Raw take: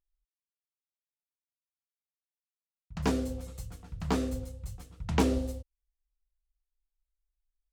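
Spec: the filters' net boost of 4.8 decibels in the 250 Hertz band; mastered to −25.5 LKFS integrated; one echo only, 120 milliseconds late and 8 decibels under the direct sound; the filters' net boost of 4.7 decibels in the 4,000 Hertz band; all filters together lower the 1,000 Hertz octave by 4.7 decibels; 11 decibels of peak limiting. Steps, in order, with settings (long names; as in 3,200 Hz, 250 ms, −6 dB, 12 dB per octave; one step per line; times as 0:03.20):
parametric band 250 Hz +5.5 dB
parametric band 1,000 Hz −6.5 dB
parametric band 4,000 Hz +6.5 dB
brickwall limiter −21.5 dBFS
single-tap delay 120 ms −8 dB
level +7.5 dB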